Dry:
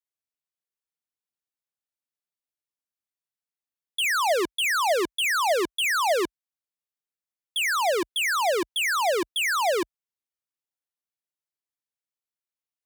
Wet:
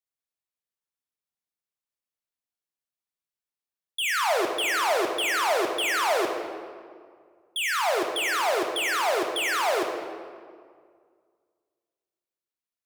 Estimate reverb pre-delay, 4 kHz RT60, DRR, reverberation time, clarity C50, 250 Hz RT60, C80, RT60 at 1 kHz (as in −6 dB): 16 ms, 1.2 s, 2.0 dB, 2.0 s, 4.0 dB, 2.1 s, 5.5 dB, 1.9 s